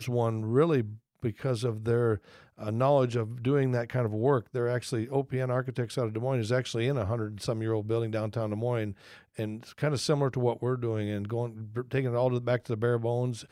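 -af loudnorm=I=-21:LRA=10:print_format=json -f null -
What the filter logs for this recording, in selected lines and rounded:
"input_i" : "-29.9",
"input_tp" : "-12.4",
"input_lra" : "2.5",
"input_thresh" : "-40.0",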